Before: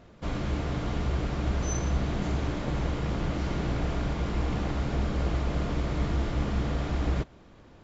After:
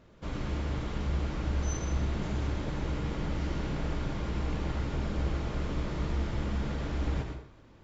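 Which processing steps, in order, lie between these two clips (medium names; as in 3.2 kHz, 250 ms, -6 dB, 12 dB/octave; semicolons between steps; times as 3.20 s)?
band-stop 710 Hz, Q 13; on a send: reverberation RT60 0.60 s, pre-delay 84 ms, DRR 3.5 dB; on the sum: trim -5 dB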